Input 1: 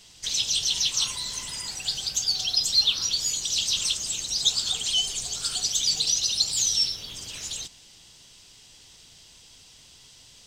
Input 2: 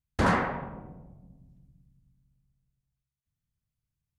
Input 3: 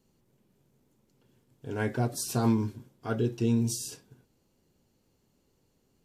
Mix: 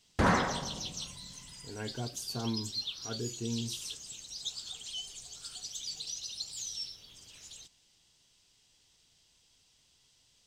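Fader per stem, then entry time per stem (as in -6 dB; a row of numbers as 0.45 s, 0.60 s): -16.0 dB, -2.0 dB, -10.0 dB; 0.00 s, 0.00 s, 0.00 s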